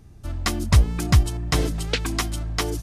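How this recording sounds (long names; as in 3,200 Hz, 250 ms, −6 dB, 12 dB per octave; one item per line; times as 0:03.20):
background noise floor −46 dBFS
spectral slope −5.0 dB per octave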